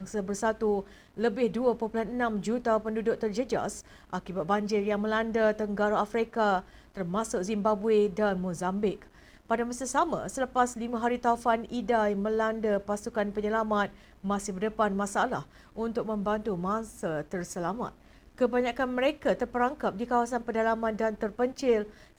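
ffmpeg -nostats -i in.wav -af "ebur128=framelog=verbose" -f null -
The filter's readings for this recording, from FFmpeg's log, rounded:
Integrated loudness:
  I:         -29.4 LUFS
  Threshold: -39.5 LUFS
Loudness range:
  LRA:         2.8 LU
  Threshold: -49.6 LUFS
  LRA low:   -31.3 LUFS
  LRA high:  -28.5 LUFS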